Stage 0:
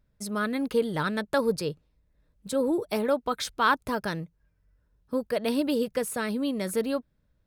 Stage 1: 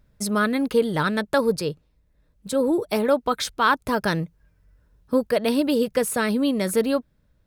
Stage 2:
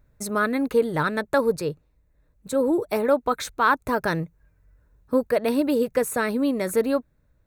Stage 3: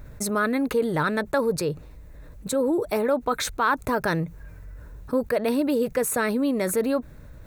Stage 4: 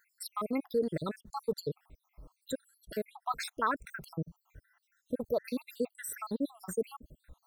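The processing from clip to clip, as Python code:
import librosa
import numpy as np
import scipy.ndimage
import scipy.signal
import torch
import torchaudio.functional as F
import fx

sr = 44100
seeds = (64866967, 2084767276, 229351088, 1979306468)

y1 = fx.rider(x, sr, range_db=4, speed_s=0.5)
y1 = y1 * librosa.db_to_amplitude(6.0)
y2 = fx.graphic_eq_31(y1, sr, hz=(200, 3150, 5000, 10000), db=(-7, -11, -10, -5))
y3 = fx.env_flatten(y2, sr, amount_pct=50)
y3 = y3 * librosa.db_to_amplitude(-4.0)
y4 = fx.spec_dropout(y3, sr, seeds[0], share_pct=73)
y4 = y4 * librosa.db_to_amplitude(-6.5)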